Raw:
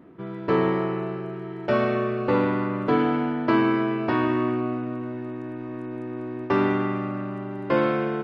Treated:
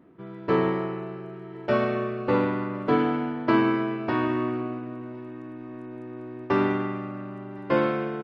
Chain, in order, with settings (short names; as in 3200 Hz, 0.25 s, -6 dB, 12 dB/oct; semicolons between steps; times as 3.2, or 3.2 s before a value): echo 1.059 s -23.5 dB; upward expander 1.5:1, over -29 dBFS